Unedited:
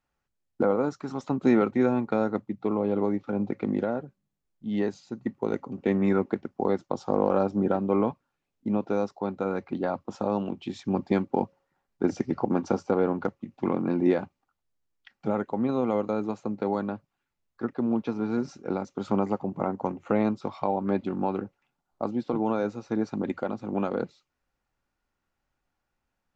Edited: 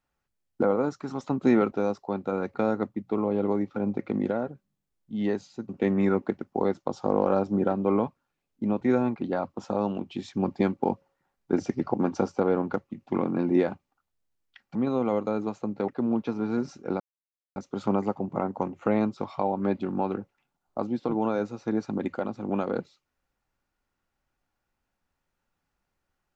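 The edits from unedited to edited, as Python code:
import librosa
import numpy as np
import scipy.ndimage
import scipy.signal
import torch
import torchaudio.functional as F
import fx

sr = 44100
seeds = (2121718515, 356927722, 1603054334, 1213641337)

y = fx.edit(x, sr, fx.swap(start_s=1.72, length_s=0.35, other_s=8.85, other_length_s=0.82),
    fx.cut(start_s=5.22, length_s=0.51),
    fx.cut(start_s=15.26, length_s=0.31),
    fx.cut(start_s=16.7, length_s=0.98),
    fx.insert_silence(at_s=18.8, length_s=0.56), tone=tone)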